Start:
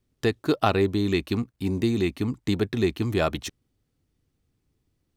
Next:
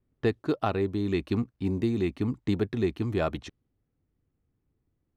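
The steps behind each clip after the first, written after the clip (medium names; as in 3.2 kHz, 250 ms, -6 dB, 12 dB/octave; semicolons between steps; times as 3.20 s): treble shelf 2.8 kHz -10 dB; gain riding 0.5 s; level-controlled noise filter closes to 2.4 kHz, open at -22 dBFS; trim -3 dB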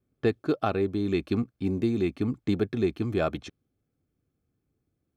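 comb of notches 950 Hz; trim +1.5 dB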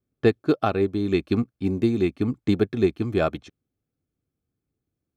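upward expansion 1.5:1, over -42 dBFS; trim +6.5 dB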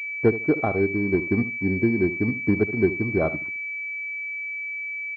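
distance through air 100 m; feedback delay 74 ms, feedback 20%, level -14 dB; class-D stage that switches slowly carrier 2.3 kHz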